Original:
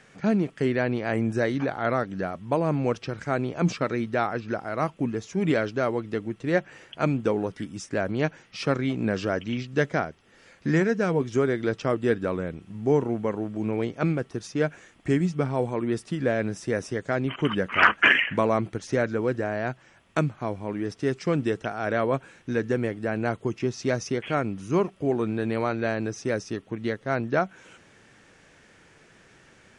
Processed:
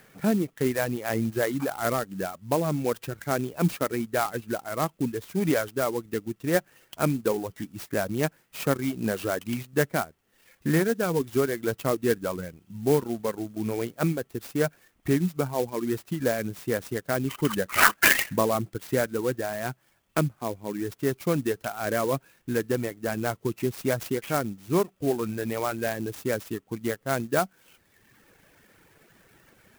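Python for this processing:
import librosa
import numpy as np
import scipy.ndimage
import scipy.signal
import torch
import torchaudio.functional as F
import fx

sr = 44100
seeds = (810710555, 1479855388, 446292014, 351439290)

y = fx.dereverb_blind(x, sr, rt60_s=1.1)
y = fx.clock_jitter(y, sr, seeds[0], jitter_ms=0.05)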